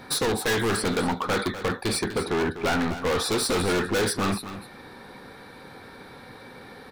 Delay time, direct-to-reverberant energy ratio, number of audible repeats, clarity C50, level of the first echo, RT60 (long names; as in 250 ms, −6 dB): 248 ms, no reverb audible, 1, no reverb audible, −12.0 dB, no reverb audible